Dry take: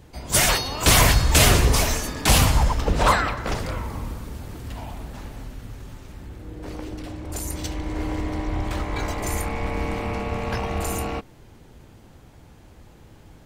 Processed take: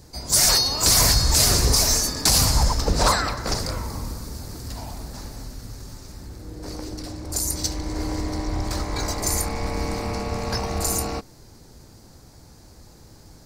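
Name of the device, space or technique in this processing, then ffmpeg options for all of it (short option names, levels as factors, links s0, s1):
over-bright horn tweeter: -af "highshelf=f=3800:t=q:w=3:g=7,alimiter=limit=0.473:level=0:latency=1:release=220"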